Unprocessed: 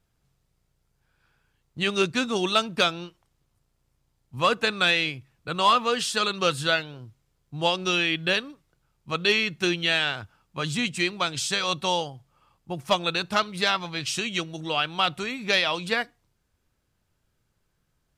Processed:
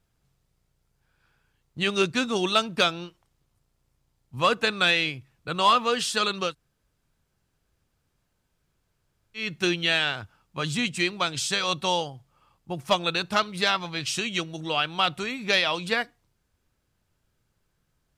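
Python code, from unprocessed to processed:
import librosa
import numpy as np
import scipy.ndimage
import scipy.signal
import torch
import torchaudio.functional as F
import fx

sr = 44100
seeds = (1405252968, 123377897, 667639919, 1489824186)

y = fx.edit(x, sr, fx.room_tone_fill(start_s=6.47, length_s=2.95, crossfade_s=0.16), tone=tone)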